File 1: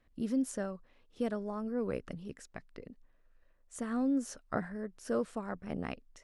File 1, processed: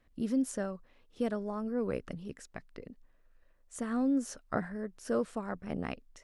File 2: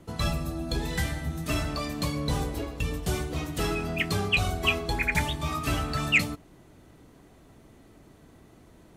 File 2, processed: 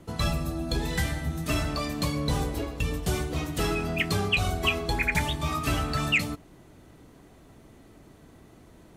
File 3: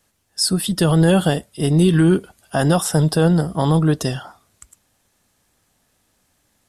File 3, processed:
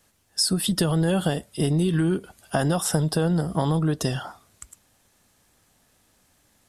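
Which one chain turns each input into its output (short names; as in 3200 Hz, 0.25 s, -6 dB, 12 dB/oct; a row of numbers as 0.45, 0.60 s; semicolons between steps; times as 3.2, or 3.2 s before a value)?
compressor 6:1, threshold -21 dBFS; gain +1.5 dB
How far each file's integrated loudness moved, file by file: +1.5, +0.5, -6.5 LU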